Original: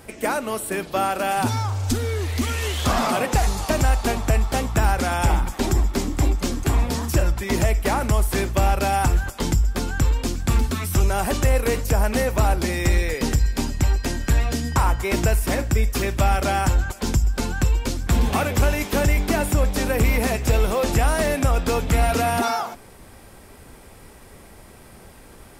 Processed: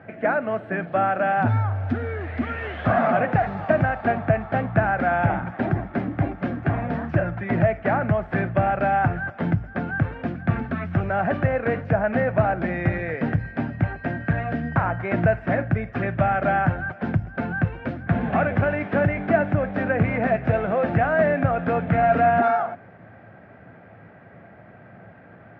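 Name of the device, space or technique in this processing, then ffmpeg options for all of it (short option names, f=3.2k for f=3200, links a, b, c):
bass cabinet: -af "highpass=110,highpass=78,equalizer=f=110:t=q:w=4:g=10,equalizer=f=170:t=q:w=4:g=7,equalizer=f=400:t=q:w=4:g=-5,equalizer=f=670:t=q:w=4:g=9,equalizer=f=990:t=q:w=4:g=-7,equalizer=f=1.6k:t=q:w=4:g=7,lowpass=f=2.1k:w=0.5412,lowpass=f=2.1k:w=1.3066,volume=-1dB"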